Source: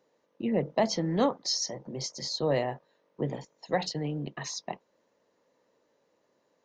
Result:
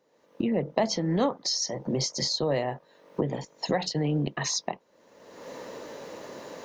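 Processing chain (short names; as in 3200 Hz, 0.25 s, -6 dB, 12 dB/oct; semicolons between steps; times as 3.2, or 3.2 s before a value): recorder AGC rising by 38 dB/s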